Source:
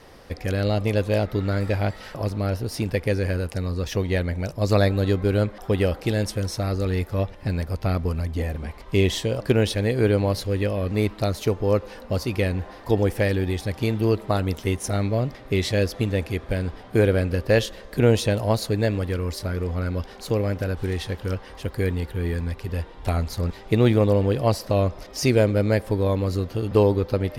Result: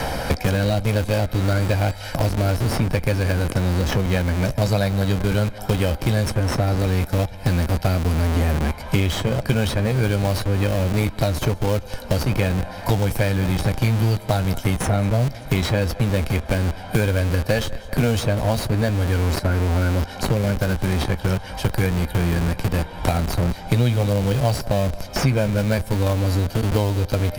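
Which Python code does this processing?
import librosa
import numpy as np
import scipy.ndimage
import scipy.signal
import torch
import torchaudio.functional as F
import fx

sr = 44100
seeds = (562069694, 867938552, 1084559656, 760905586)

p1 = fx.high_shelf(x, sr, hz=7100.0, db=7.5)
p2 = p1 + 0.6 * np.pad(p1, (int(1.3 * sr / 1000.0), 0))[:len(p1)]
p3 = p2 + fx.echo_feedback(p2, sr, ms=193, feedback_pct=45, wet_db=-21, dry=0)
p4 = fx.chorus_voices(p3, sr, voices=2, hz=0.11, base_ms=15, depth_ms=2.2, mix_pct=25)
p5 = fx.schmitt(p4, sr, flips_db=-27.0)
p6 = p4 + F.gain(torch.from_numpy(p5), -3.0).numpy()
y = fx.band_squash(p6, sr, depth_pct=100)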